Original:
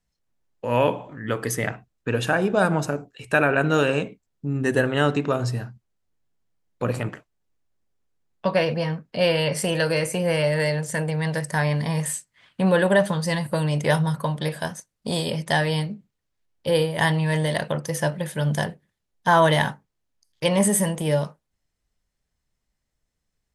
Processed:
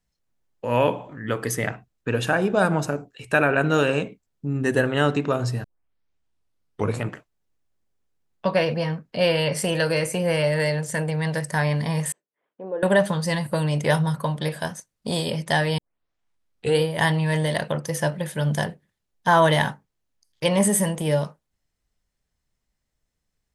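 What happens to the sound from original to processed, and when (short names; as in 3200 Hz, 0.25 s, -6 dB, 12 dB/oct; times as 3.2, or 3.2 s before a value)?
5.64 tape start 1.38 s
12.12–12.83 ladder band-pass 470 Hz, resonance 45%
15.78 tape start 1.03 s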